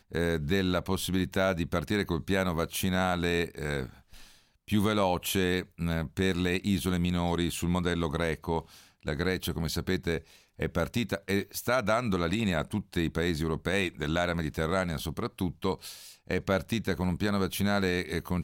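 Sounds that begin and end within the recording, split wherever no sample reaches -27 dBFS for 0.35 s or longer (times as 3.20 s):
4.72–8.59 s
9.08–10.17 s
10.62–15.73 s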